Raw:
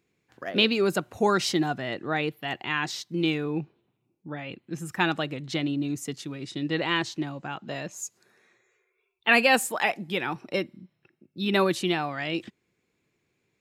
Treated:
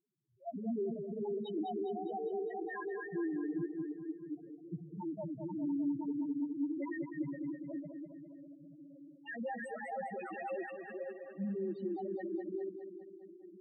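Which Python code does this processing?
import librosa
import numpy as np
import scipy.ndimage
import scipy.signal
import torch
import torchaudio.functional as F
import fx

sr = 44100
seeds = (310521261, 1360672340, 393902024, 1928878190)

p1 = fx.reverse_delay_fb(x, sr, ms=263, feedback_pct=80, wet_db=-8)
p2 = fx.low_shelf(p1, sr, hz=99.0, db=-11.0, at=(10.27, 10.74), fade=0.02)
p3 = fx.level_steps(p2, sr, step_db=16)
p4 = 10.0 ** (-18.5 / 20.0) * np.tanh(p3 / 10.0 ** (-18.5 / 20.0))
p5 = fx.spec_topn(p4, sr, count=1)
p6 = fx.high_shelf(p5, sr, hz=3400.0, db=-7.0)
p7 = p6 + fx.echo_feedback(p6, sr, ms=204, feedback_pct=58, wet_db=-7.5, dry=0)
y = p7 * librosa.db_to_amplitude(3.5)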